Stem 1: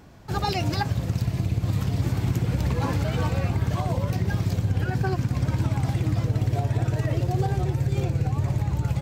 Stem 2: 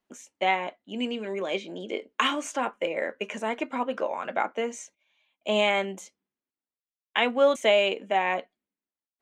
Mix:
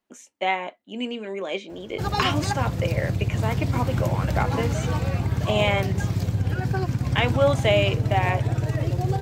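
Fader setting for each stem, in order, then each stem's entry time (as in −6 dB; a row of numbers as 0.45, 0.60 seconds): 0.0, +0.5 decibels; 1.70, 0.00 seconds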